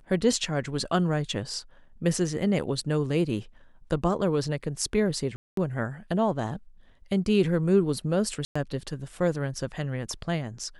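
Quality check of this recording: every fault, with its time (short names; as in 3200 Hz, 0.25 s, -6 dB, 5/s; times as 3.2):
5.36–5.57 gap 0.213 s
8.45–8.55 gap 0.105 s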